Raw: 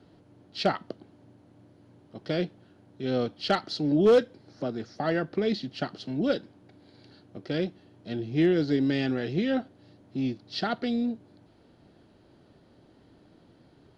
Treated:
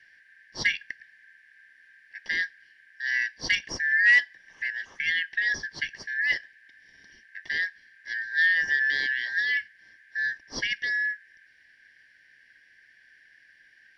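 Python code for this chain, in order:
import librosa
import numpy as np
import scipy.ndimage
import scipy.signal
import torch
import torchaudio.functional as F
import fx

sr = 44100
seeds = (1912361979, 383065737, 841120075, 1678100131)

y = fx.band_shuffle(x, sr, order='4123')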